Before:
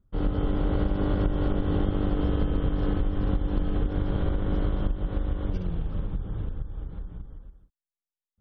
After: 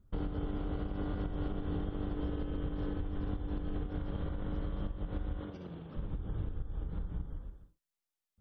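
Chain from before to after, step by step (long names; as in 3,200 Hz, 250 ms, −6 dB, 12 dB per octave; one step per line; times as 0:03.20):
downward compressor 12 to 1, threshold −34 dBFS, peak gain reduction 16.5 dB
0:05.40–0:05.97: high-pass filter 160 Hz 12 dB per octave
reverb whose tail is shaped and stops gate 110 ms flat, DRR 8.5 dB
level +2 dB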